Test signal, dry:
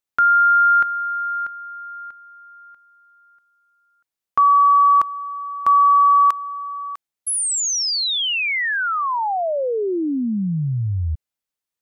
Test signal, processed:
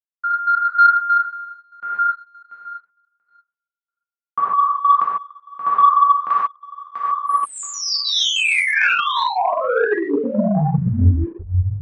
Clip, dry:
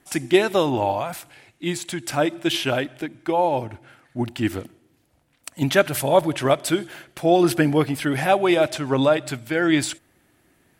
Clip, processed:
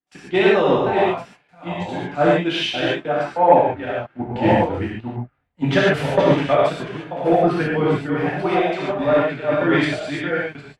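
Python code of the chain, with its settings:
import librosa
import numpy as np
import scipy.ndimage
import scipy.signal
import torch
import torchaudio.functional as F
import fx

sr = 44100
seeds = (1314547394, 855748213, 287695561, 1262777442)

y = fx.reverse_delay(x, sr, ms=663, wet_db=-4.0)
y = fx.step_gate(y, sr, bpm=192, pattern='xx.xxx.xxx.x', floor_db=-60.0, edge_ms=4.5)
y = fx.rev_gated(y, sr, seeds[0], gate_ms=170, shape='flat', drr_db=-6.5)
y = fx.leveller(y, sr, passes=1)
y = scipy.signal.sosfilt(scipy.signal.butter(2, 2500.0, 'lowpass', fs=sr, output='sos'), y)
y = fx.rider(y, sr, range_db=5, speed_s=2.0)
y = fx.peak_eq(y, sr, hz=72.0, db=-3.5, octaves=1.4)
y = fx.band_widen(y, sr, depth_pct=70)
y = y * librosa.db_to_amplitude(-6.0)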